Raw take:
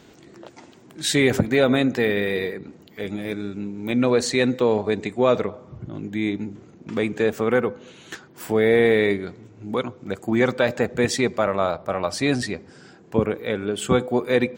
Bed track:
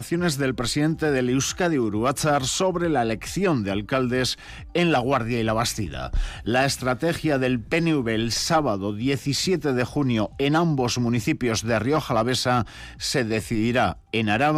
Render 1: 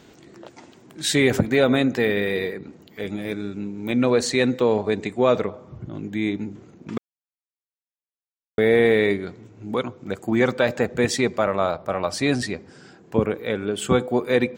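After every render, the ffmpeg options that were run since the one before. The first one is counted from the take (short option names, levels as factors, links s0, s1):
-filter_complex "[0:a]asplit=3[s0][s1][s2];[s0]atrim=end=6.98,asetpts=PTS-STARTPTS,afade=t=out:st=6.976:d=0.004:c=hsin[s3];[s1]atrim=start=6.98:end=8.58,asetpts=PTS-STARTPTS,volume=0[s4];[s2]atrim=start=8.58,asetpts=PTS-STARTPTS,afade=t=in:d=0.004:c=hsin[s5];[s3][s4][s5]concat=n=3:v=0:a=1"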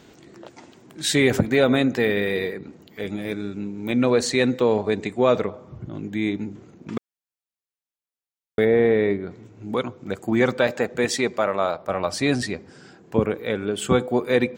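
-filter_complex "[0:a]asplit=3[s0][s1][s2];[s0]afade=t=out:st=8.64:d=0.02[s3];[s1]lowpass=f=1100:p=1,afade=t=in:st=8.64:d=0.02,afade=t=out:st=9.3:d=0.02[s4];[s2]afade=t=in:st=9.3:d=0.02[s5];[s3][s4][s5]amix=inputs=3:normalize=0,asettb=1/sr,asplit=3[s6][s7][s8];[s6]atrim=end=10.674[s9];[s7]atrim=start=10.67:end=11.89,asetpts=PTS-STARTPTS,afade=t=in:d=0.004:c=qsin,afade=t=out:st=1.216:d=0.004:c=qsin,lowshelf=f=140:g=-12[s10];[s8]atrim=start=11.886[s11];[s9][s10]acrossfade=d=0.004:c1=hsin:c2=qsin[s12];[s12][s11]acrossfade=d=0.004:c1=qsin:c2=hsin"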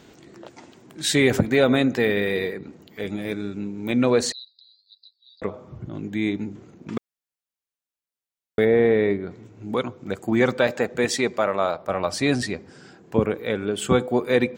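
-filter_complex "[0:a]asettb=1/sr,asplit=3[s0][s1][s2];[s0]atrim=end=4.324[s3];[s1]atrim=start=4.32:end=5.42,asetpts=PTS-STARTPTS,afade=t=in:d=0.004:c=qsin,afade=t=out:st=1.096:d=0.004:c=qsin,asuperpass=centerf=4400:order=8:qfactor=4.4[s4];[s2]atrim=start=5.416[s5];[s3][s4]acrossfade=d=0.004:c1=hsin:c2=qsin[s6];[s6][s5]acrossfade=d=0.004:c1=qsin:c2=hsin"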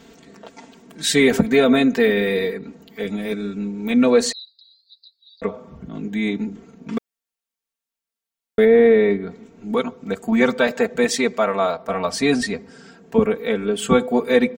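-af "aecho=1:1:4.4:0.97"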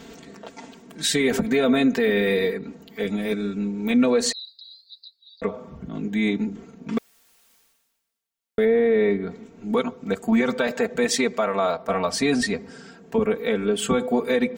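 -af "alimiter=limit=0.266:level=0:latency=1:release=89,areverse,acompressor=mode=upward:threshold=0.0158:ratio=2.5,areverse"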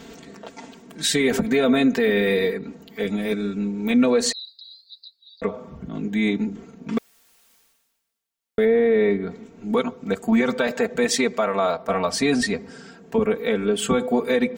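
-af "volume=1.12"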